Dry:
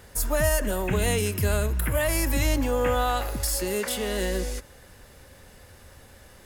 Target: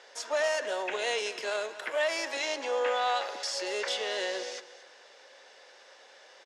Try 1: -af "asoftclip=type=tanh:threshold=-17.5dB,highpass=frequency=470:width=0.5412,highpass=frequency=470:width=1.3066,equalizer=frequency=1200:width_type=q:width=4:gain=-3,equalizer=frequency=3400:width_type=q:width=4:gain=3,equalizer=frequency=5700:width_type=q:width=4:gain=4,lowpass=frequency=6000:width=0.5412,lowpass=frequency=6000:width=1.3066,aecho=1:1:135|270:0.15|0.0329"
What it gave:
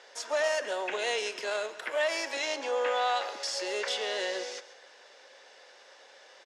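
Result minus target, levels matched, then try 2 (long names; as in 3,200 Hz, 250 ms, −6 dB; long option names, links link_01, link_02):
echo 97 ms early
-af "asoftclip=type=tanh:threshold=-17.5dB,highpass=frequency=470:width=0.5412,highpass=frequency=470:width=1.3066,equalizer=frequency=1200:width_type=q:width=4:gain=-3,equalizer=frequency=3400:width_type=q:width=4:gain=3,equalizer=frequency=5700:width_type=q:width=4:gain=4,lowpass=frequency=6000:width=0.5412,lowpass=frequency=6000:width=1.3066,aecho=1:1:232|464:0.15|0.0329"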